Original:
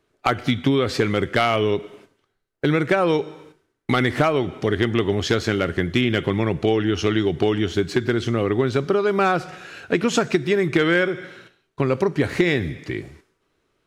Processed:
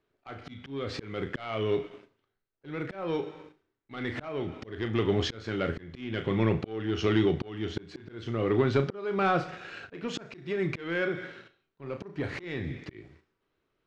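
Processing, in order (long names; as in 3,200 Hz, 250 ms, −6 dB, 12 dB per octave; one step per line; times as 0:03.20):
on a send: flutter between parallel walls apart 6.2 metres, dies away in 0.2 s
on the sum: leveller curve on the samples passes 1
volume swells 487 ms
low-pass filter 4,400 Hz 12 dB per octave
level −7 dB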